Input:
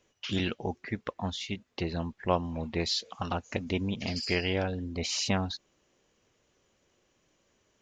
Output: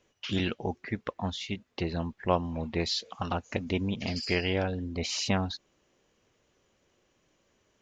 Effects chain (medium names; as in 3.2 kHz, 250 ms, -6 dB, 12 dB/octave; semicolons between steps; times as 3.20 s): treble shelf 6.5 kHz -5.5 dB; trim +1 dB